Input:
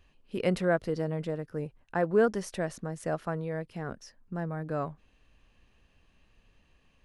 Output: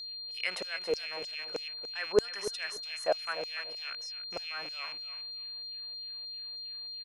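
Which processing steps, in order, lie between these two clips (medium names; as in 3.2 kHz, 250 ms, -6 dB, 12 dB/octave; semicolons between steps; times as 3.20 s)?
rattle on loud lows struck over -43 dBFS, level -35 dBFS; LFO high-pass saw down 3.2 Hz 490–6600 Hz; on a send: feedback delay 289 ms, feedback 19%, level -12.5 dB; on the sum: whistle 4.2 kHz -39 dBFS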